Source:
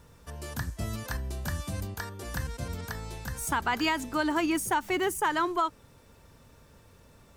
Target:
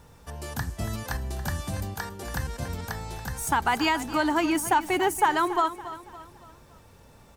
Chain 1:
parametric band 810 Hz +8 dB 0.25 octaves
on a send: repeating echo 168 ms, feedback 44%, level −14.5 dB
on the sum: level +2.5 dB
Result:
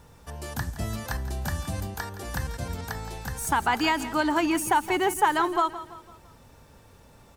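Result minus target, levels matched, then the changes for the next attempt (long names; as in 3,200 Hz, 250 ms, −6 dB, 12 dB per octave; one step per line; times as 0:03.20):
echo 113 ms early
change: repeating echo 281 ms, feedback 44%, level −14.5 dB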